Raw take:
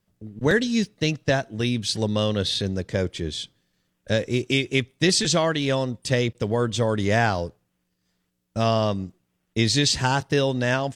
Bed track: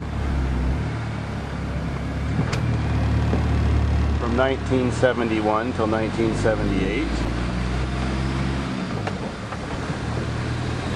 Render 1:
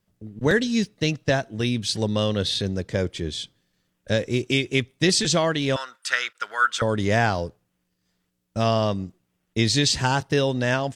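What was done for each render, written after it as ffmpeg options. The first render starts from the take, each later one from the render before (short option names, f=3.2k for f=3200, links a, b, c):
-filter_complex "[0:a]asettb=1/sr,asplit=3[a][b][c];[a]atrim=end=5.764[d];[b]atrim=start=5.76:end=6.82,asetpts=PTS-STARTPTS,afade=t=in:d=0.004:c=qsin,afade=t=out:st=1.056:d=0.004:c=qsin,highpass=f=1.4k:t=q:w=11[e];[c]atrim=start=6.816[f];[d][e]acrossfade=d=0.004:c1=hsin:c2=qsin[g];[g][f]acrossfade=d=0.004:c1=qsin:c2=hsin"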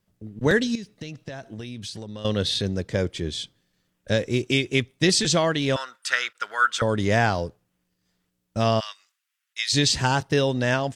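-filter_complex "[0:a]asettb=1/sr,asplit=3[a][b][c];[a]atrim=end=0.754[d];[b]atrim=start=0.75:end=2.25,asetpts=PTS-STARTPTS,afade=t=in:d=0.004:c=qsin,afade=t=out:st=1.496:d=0.004:c=qsin,acompressor=threshold=-31dB:ratio=20:attack=3.2:release=140:knee=1:detection=peak[e];[c]atrim=start=2.246[f];[d][e]acrossfade=d=0.004:c1=hsin:c2=qsin[g];[g][f]acrossfade=d=0.004:c1=qsin:c2=hsin,asplit=3[h][i][j];[h]afade=t=out:st=8.79:d=0.02[k];[i]highpass=f=1.4k:w=0.5412,highpass=f=1.4k:w=1.3066,afade=t=in:st=8.79:d=0.02,afade=t=out:st=9.72:d=0.02[l];[j]afade=t=in:st=9.72:d=0.02[m];[k][l][m]amix=inputs=3:normalize=0"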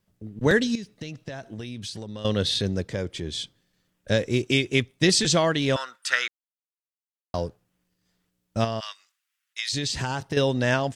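-filter_complex "[0:a]asettb=1/sr,asplit=3[a][b][c];[a]atrim=end=2.894[d];[b]atrim=start=2.89:end=3.34,asetpts=PTS-STARTPTS,afade=t=in:d=0.004:c=qsin,afade=t=out:st=0.446:d=0.004:c=qsin,acompressor=threshold=-32dB:ratio=1.5:attack=3.2:release=140:knee=1:detection=peak[e];[c]atrim=start=3.336[f];[d][e]acrossfade=d=0.004:c1=hsin:c2=qsin[g];[g][f]acrossfade=d=0.004:c1=qsin:c2=hsin,asettb=1/sr,asplit=3[h][i][j];[h]atrim=end=8.644[k];[i]atrim=start=8.64:end=10.37,asetpts=PTS-STARTPTS,afade=t=in:d=0.004:c=qsin,afade=t=out:st=1.726:d=0.004:c=qsin,acompressor=threshold=-24dB:ratio=6:attack=3.2:release=140:knee=1:detection=peak[l];[j]atrim=start=10.366[m];[k][l]acrossfade=d=0.004:c1=hsin:c2=qsin[n];[n][m]acrossfade=d=0.004:c1=qsin:c2=hsin,asplit=3[o][p][q];[o]atrim=end=6.28,asetpts=PTS-STARTPTS,afade=t=out:st=6.276:d=0.004:c=hsin[r];[p]atrim=start=6.28:end=7.34,asetpts=PTS-STARTPTS,volume=0[s];[q]atrim=start=7.34,asetpts=PTS-STARTPTS,afade=t=in:d=0.004:c=hsin[t];[r][s][t]concat=n=3:v=0:a=1"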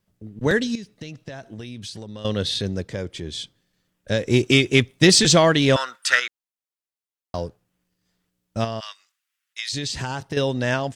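-filter_complex "[0:a]asettb=1/sr,asplit=3[a][b][c];[a]atrim=end=4.274[d];[b]atrim=start=4.27:end=6.2,asetpts=PTS-STARTPTS,afade=t=in:d=0.004:c=qsin,afade=t=out:st=1.926:d=0.004:c=qsin,acontrast=66[e];[c]atrim=start=6.196[f];[d][e]acrossfade=d=0.004:c1=hsin:c2=qsin[g];[g][f]acrossfade=d=0.004:c1=qsin:c2=hsin"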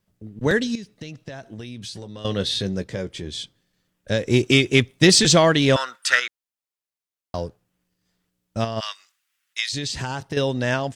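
-filter_complex "[0:a]asettb=1/sr,asplit=3[a][b][c];[a]atrim=end=1.794[d];[b]atrim=start=1.79:end=3.27,asetpts=PTS-STARTPTS,afade=t=in:d=0.004:c=qsin,afade=t=out:st=1.476:d=0.004:c=qsin,asplit=2[e][f];[f]adelay=16,volume=-9dB[g];[e][g]amix=inputs=2:normalize=0,atrim=end_sample=65268[h];[c]atrim=start=3.266[i];[d][h]acrossfade=d=0.004:c1=hsin:c2=qsin[j];[j][i]acrossfade=d=0.004:c1=qsin:c2=hsin,asplit=3[k][l][m];[k]afade=t=out:st=8.76:d=0.02[n];[l]acontrast=48,afade=t=in:st=8.76:d=0.02,afade=t=out:st=9.65:d=0.02[o];[m]afade=t=in:st=9.65:d=0.02[p];[n][o][p]amix=inputs=3:normalize=0"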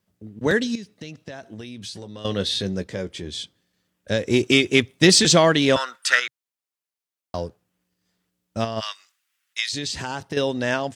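-af "highpass=65,equalizer=f=130:t=o:w=0.26:g=-9"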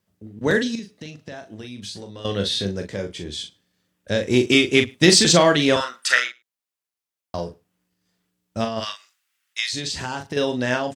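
-filter_complex "[0:a]asplit=2[a][b];[b]adelay=40,volume=-7dB[c];[a][c]amix=inputs=2:normalize=0,asplit=2[d][e];[e]adelay=105,volume=-27dB,highshelf=f=4k:g=-2.36[f];[d][f]amix=inputs=2:normalize=0"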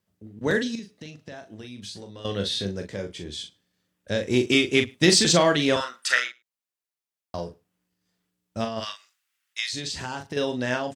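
-af "volume=-4dB"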